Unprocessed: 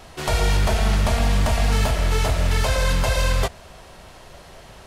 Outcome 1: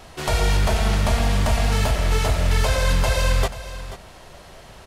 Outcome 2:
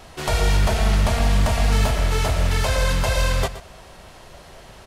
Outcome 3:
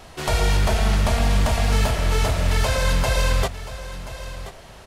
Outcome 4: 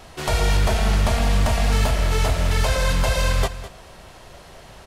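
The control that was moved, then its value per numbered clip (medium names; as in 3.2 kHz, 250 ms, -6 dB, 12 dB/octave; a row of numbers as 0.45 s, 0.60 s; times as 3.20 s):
delay, time: 485 ms, 122 ms, 1030 ms, 206 ms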